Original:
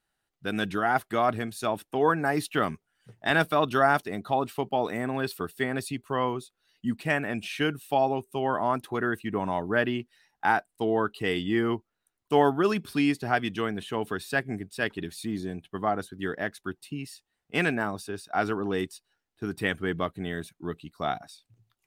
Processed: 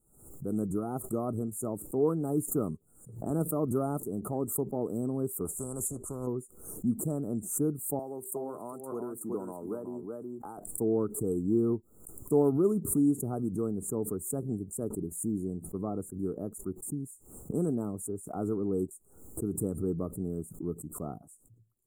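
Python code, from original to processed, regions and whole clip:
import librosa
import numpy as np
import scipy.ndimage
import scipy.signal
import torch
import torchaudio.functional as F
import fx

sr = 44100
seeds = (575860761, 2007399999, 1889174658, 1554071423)

y = fx.chain(x, sr, fx.lowpass(hz=7100.0, slope=12),
    fx.spectral_comp(ratio=4.0), at=(5.45, 6.27))
y = fx.chain(y, sr, fx.highpass(hz=890.0, slope=6),
    fx.echo_single(ms=372, db=-7.0),
    fx.band_squash(depth_pct=100), at=(7.99, 10.58))
y = scipy.signal.sosfilt(scipy.signal.cheby1(5, 1.0, [1300.0, 7200.0], 'bandstop', fs=sr, output='sos'), y)
y = fx.band_shelf(y, sr, hz=1400.0, db=-16.0, octaves=2.5)
y = fx.pre_swell(y, sr, db_per_s=89.0)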